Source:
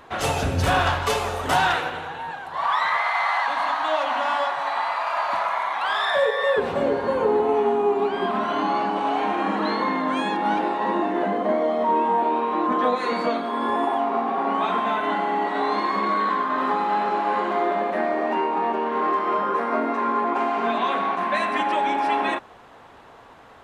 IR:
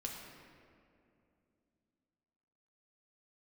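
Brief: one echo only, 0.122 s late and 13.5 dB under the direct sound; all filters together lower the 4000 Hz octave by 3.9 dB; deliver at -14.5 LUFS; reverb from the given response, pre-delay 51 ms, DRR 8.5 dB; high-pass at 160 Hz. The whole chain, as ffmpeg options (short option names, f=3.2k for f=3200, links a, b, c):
-filter_complex "[0:a]highpass=160,equalizer=f=4k:t=o:g=-5,aecho=1:1:122:0.211,asplit=2[a][b];[1:a]atrim=start_sample=2205,adelay=51[c];[b][c]afir=irnorm=-1:irlink=0,volume=-8dB[d];[a][d]amix=inputs=2:normalize=0,volume=8.5dB"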